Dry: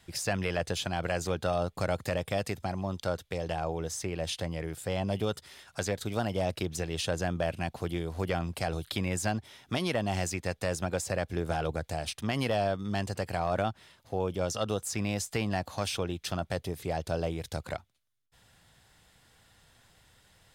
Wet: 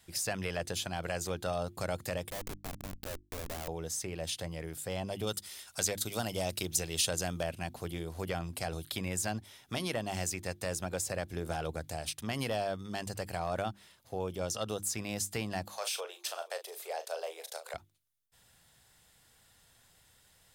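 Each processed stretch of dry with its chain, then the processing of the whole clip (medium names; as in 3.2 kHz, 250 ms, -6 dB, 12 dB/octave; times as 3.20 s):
2.30–3.68 s: high-pass 190 Hz 24 dB/octave + Schmitt trigger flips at -32.5 dBFS
5.27–7.43 s: treble shelf 2.8 kHz +8.5 dB + band-stop 1.7 kHz, Q 18
15.68–17.74 s: steep high-pass 440 Hz 48 dB/octave + doubling 37 ms -9 dB + delay 475 ms -23 dB
whole clip: treble shelf 6.9 kHz +11.5 dB; hum notches 50/100/150/200/250/300/350 Hz; trim -5 dB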